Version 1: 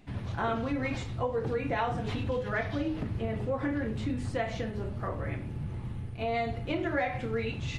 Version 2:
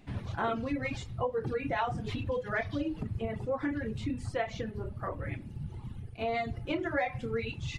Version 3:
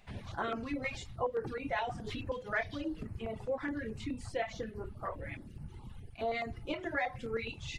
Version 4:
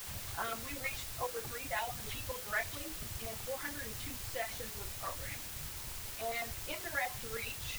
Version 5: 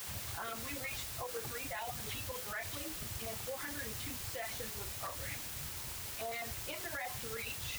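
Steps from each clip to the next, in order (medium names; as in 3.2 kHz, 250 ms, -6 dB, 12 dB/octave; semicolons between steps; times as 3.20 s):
reverb removal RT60 1.8 s
peaking EQ 120 Hz -9 dB 1.9 oct; step-sequenced notch 9.5 Hz 300–3500 Hz
peaking EQ 290 Hz -12.5 dB 1.7 oct; in parallel at -5 dB: word length cut 6-bit, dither triangular; on the sum: trim -4 dB
high-pass 53 Hz; peak limiter -32.5 dBFS, peak gain reduction 10 dB; trim +1 dB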